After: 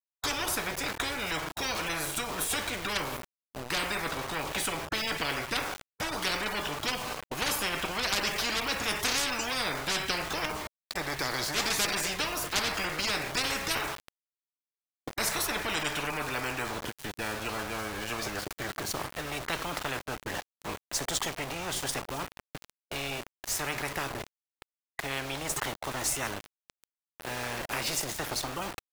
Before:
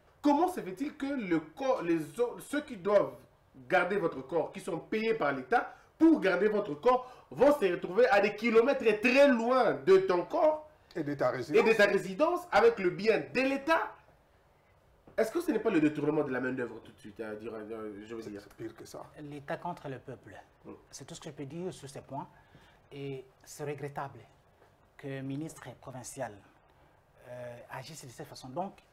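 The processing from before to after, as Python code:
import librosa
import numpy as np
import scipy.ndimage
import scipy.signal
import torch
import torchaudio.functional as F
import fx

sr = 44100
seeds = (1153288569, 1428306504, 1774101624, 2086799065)

y = np.where(np.abs(x) >= 10.0 ** (-50.0 / 20.0), x, 0.0)
y = fx.spectral_comp(y, sr, ratio=10.0)
y = F.gain(torch.from_numpy(y), 6.0).numpy()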